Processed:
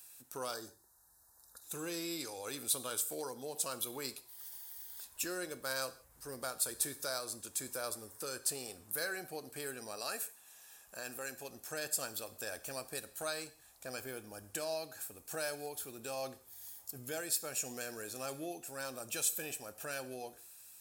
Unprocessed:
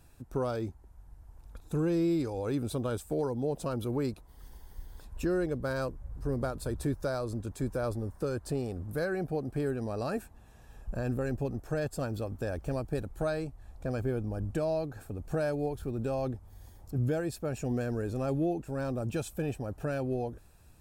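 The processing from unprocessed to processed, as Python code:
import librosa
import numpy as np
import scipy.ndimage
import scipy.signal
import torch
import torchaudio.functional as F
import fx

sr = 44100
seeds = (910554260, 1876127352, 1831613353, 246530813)

y = np.diff(x, prepend=0.0)
y = fx.cheby1_bandstop(y, sr, low_hz=1800.0, high_hz=3800.0, order=4, at=(0.54, 1.64))
y = fx.low_shelf(y, sr, hz=220.0, db=-9.0, at=(9.96, 11.5))
y = fx.rev_gated(y, sr, seeds[0], gate_ms=200, shape='falling', drr_db=11.5)
y = F.gain(torch.from_numpy(y), 12.0).numpy()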